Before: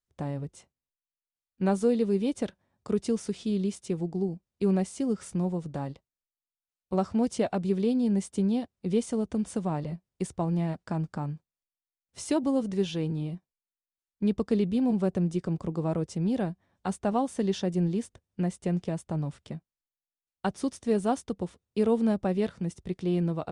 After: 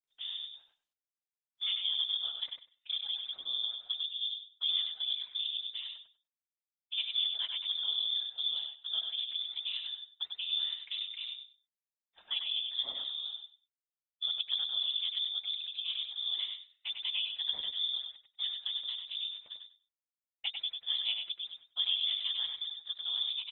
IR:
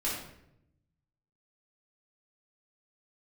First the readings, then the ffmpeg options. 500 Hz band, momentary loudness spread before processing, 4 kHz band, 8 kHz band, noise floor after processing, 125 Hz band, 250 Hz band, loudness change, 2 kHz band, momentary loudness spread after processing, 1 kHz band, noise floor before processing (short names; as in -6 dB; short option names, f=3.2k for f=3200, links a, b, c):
under -35 dB, 10 LU, +19.0 dB, under -35 dB, under -85 dBFS, under -40 dB, under -40 dB, -4.0 dB, -2.5 dB, 9 LU, under -20 dB, under -85 dBFS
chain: -filter_complex "[0:a]afftfilt=real='hypot(re,im)*cos(2*PI*random(0))':imag='hypot(re,im)*sin(2*PI*random(1))':win_size=512:overlap=0.75,adynamicequalizer=threshold=0.00355:dfrequency=740:dqfactor=1.6:tfrequency=740:tqfactor=1.6:attack=5:release=100:ratio=0.375:range=2:mode=cutabove:tftype=bell,lowpass=f=3.1k:t=q:w=0.5098,lowpass=f=3.1k:t=q:w=0.6013,lowpass=f=3.1k:t=q:w=0.9,lowpass=f=3.1k:t=q:w=2.563,afreqshift=-3700,asplit=2[a][b];[b]aecho=0:1:97|194|291:0.531|0.0956|0.0172[c];[a][c]amix=inputs=2:normalize=0,volume=-2.5dB" -ar 48000 -c:a libopus -b:a 20k